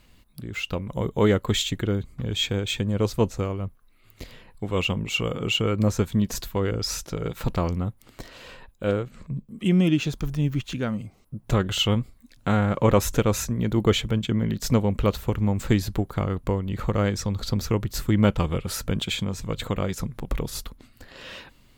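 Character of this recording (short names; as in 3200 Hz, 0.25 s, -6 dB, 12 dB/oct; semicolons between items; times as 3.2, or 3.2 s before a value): noise floor -57 dBFS; spectral tilt -5.5 dB/oct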